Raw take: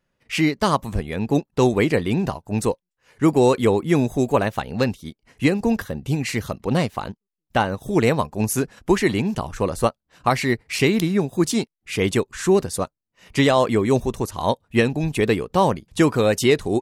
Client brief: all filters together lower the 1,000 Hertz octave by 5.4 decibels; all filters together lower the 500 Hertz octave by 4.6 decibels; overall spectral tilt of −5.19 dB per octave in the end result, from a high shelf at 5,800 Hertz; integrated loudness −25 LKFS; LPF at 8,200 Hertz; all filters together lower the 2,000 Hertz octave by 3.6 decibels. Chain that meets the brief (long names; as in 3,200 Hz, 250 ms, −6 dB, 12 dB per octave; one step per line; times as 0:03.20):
low-pass filter 8,200 Hz
parametric band 500 Hz −5 dB
parametric band 1,000 Hz −4.5 dB
parametric band 2,000 Hz −4 dB
high-shelf EQ 5,800 Hz +8 dB
level −1.5 dB